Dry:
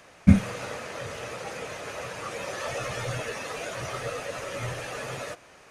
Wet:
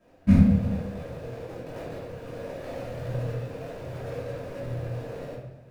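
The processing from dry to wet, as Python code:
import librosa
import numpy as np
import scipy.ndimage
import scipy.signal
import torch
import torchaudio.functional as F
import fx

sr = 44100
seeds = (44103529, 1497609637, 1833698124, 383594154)

y = scipy.ndimage.median_filter(x, 41, mode='constant')
y = fx.hpss(y, sr, part='harmonic', gain_db=3)
y = fx.over_compress(y, sr, threshold_db=-44.0, ratio=-0.5, at=(1.43, 2.1), fade=0.02)
y = fx.room_shoebox(y, sr, seeds[0], volume_m3=260.0, walls='mixed', distance_m=2.8)
y = F.gain(torch.from_numpy(y), -9.0).numpy()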